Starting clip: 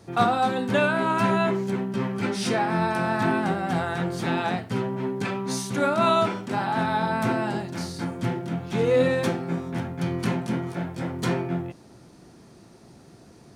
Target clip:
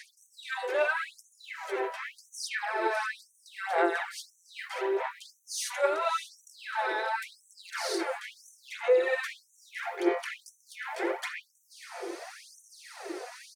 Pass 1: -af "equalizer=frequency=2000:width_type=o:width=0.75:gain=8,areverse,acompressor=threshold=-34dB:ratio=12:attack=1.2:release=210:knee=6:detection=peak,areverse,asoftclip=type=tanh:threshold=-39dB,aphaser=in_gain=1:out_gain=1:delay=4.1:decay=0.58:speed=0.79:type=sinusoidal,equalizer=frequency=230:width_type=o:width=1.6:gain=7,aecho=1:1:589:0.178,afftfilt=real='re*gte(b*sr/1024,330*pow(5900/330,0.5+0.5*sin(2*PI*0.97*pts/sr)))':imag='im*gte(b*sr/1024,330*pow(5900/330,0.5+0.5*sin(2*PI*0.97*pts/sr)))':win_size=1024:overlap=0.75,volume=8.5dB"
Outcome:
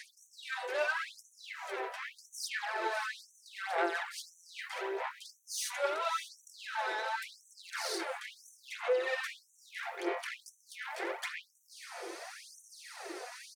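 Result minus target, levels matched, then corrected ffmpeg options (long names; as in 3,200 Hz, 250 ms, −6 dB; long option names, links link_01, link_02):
soft clipping: distortion +13 dB; 250 Hz band −3.5 dB
-af "equalizer=frequency=2000:width_type=o:width=0.75:gain=8,areverse,acompressor=threshold=-34dB:ratio=12:attack=1.2:release=210:knee=6:detection=peak,areverse,asoftclip=type=tanh:threshold=-29.5dB,aphaser=in_gain=1:out_gain=1:delay=4.1:decay=0.58:speed=0.79:type=sinusoidal,equalizer=frequency=230:width_type=o:width=1.6:gain=18,aecho=1:1:589:0.178,afftfilt=real='re*gte(b*sr/1024,330*pow(5900/330,0.5+0.5*sin(2*PI*0.97*pts/sr)))':imag='im*gte(b*sr/1024,330*pow(5900/330,0.5+0.5*sin(2*PI*0.97*pts/sr)))':win_size=1024:overlap=0.75,volume=8.5dB"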